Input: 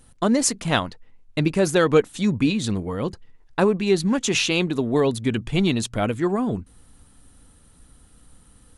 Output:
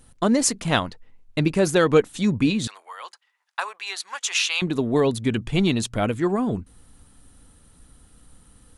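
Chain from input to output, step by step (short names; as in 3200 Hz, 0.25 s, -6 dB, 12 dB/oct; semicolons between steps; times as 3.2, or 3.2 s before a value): 2.67–4.62 HPF 900 Hz 24 dB/oct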